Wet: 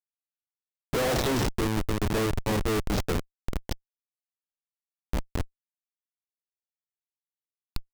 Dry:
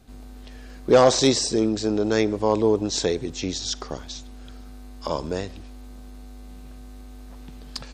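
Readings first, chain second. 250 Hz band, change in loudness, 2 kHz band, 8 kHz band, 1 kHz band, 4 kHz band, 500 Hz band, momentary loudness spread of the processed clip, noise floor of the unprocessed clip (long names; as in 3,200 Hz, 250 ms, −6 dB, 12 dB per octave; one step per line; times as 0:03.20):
−7.0 dB, −7.0 dB, −1.0 dB, −10.0 dB, −6.5 dB, −9.0 dB, −10.0 dB, 14 LU, −41 dBFS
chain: all-pass dispersion lows, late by 61 ms, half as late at 560 Hz
comparator with hysteresis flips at −19 dBFS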